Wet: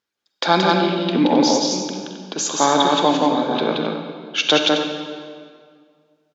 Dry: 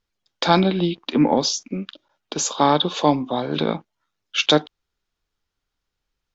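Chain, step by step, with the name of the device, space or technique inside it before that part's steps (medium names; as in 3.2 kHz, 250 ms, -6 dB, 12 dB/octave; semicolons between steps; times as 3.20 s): stadium PA (high-pass 220 Hz 12 dB/octave; peaking EQ 1.6 kHz +4 dB 0.23 oct; loudspeakers at several distances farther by 60 m -2 dB, 91 m -10 dB; reverberation RT60 2.0 s, pre-delay 40 ms, DRR 6 dB)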